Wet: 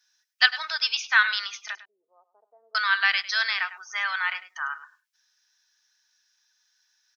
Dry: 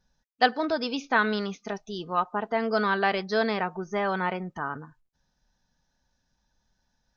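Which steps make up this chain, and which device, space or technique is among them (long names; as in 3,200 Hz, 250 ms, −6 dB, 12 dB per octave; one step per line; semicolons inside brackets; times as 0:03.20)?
headphones lying on a table (high-pass filter 1,500 Hz 24 dB per octave; parametric band 5,500 Hz +5 dB 0.22 octaves)
0:01.75–0:02.75: Butterworth low-pass 550 Hz 36 dB per octave
single-tap delay 102 ms −15.5 dB
level +9 dB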